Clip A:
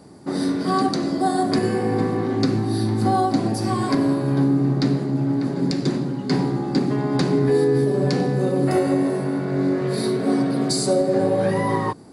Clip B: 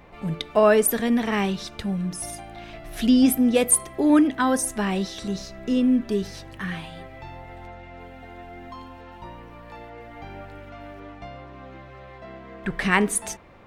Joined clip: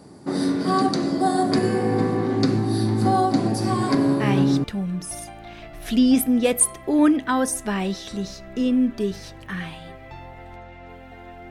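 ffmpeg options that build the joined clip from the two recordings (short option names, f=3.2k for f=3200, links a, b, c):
-filter_complex "[0:a]apad=whole_dur=11.5,atrim=end=11.5,atrim=end=4.64,asetpts=PTS-STARTPTS[a];[1:a]atrim=start=1.31:end=8.61,asetpts=PTS-STARTPTS[b];[a][b]acrossfade=d=0.44:c1=log:c2=log"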